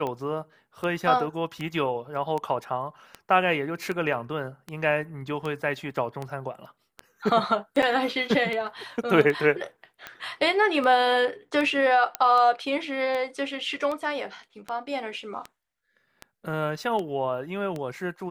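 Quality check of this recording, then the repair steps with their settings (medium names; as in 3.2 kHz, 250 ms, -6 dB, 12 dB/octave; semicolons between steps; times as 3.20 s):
tick 78 rpm -19 dBFS
7.82–7.83 s: dropout 7.1 ms
12.15 s: pop -9 dBFS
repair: de-click; interpolate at 7.82 s, 7.1 ms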